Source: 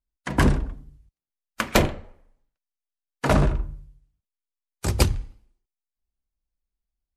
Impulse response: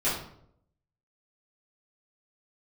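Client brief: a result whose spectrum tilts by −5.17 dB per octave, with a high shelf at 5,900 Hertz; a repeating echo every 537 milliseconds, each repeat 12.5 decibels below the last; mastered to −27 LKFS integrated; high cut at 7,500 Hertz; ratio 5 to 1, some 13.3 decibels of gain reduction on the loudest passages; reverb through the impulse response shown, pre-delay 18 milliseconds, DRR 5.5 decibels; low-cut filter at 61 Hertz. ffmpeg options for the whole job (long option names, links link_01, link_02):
-filter_complex "[0:a]highpass=61,lowpass=7500,highshelf=frequency=5900:gain=-9,acompressor=threshold=-30dB:ratio=5,aecho=1:1:537|1074|1611:0.237|0.0569|0.0137,asplit=2[link_01][link_02];[1:a]atrim=start_sample=2205,adelay=18[link_03];[link_02][link_03]afir=irnorm=-1:irlink=0,volume=-16.5dB[link_04];[link_01][link_04]amix=inputs=2:normalize=0,volume=10dB"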